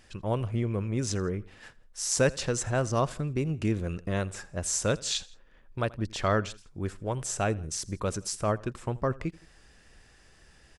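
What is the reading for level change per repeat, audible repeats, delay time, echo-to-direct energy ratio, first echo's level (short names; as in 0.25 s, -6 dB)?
-5.0 dB, 2, 83 ms, -21.5 dB, -22.5 dB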